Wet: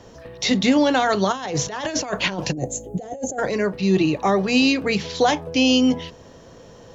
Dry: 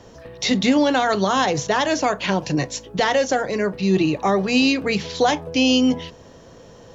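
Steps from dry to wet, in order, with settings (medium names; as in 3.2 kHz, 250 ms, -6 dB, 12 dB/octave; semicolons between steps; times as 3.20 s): 1.32–3.49 s: compressor with a negative ratio -24 dBFS, ratio -0.5; 2.53–3.39 s: time-frequency box 850–6200 Hz -21 dB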